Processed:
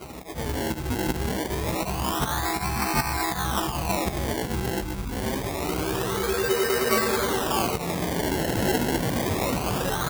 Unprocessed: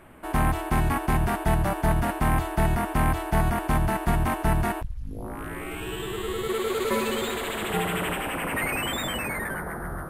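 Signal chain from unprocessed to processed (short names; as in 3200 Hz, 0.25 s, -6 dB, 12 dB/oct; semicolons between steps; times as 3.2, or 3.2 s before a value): inharmonic rescaling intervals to 110%; auto swell 0.512 s; in parallel at -1 dB: negative-ratio compressor -42 dBFS, ratio -1; on the sum: doubler 16 ms -7 dB; on a send: delay with a stepping band-pass 0.59 s, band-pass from 1200 Hz, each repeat 1.4 oct, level -1.5 dB; on the sum: decimation with a swept rate 25×, swing 100% 0.26 Hz; HPF 50 Hz; high shelf 8900 Hz +7 dB; gain +4.5 dB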